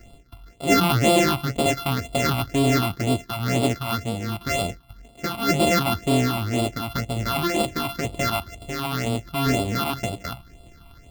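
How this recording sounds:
a buzz of ramps at a fixed pitch in blocks of 64 samples
phaser sweep stages 6, 2 Hz, lowest notch 460–1,700 Hz

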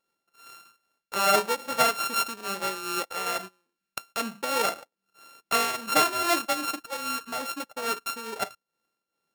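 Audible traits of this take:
a buzz of ramps at a fixed pitch in blocks of 32 samples
tremolo triangle 2.4 Hz, depth 70%

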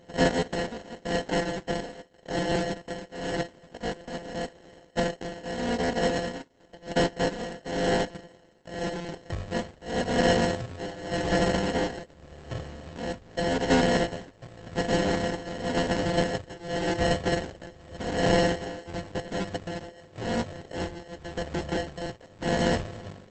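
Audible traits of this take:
a buzz of ramps at a fixed pitch in blocks of 64 samples
tremolo triangle 0.89 Hz, depth 90%
aliases and images of a low sample rate 1,200 Hz, jitter 0%
Opus

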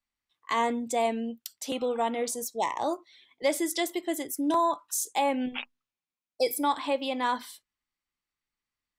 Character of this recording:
background noise floor −93 dBFS
spectral slope −2.0 dB per octave

